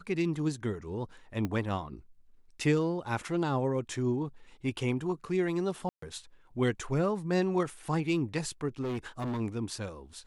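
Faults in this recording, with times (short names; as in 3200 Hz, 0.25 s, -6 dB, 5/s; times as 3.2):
1.45 pop -20 dBFS
5.89–6.02 gap 0.134 s
8.81–9.41 clipped -30.5 dBFS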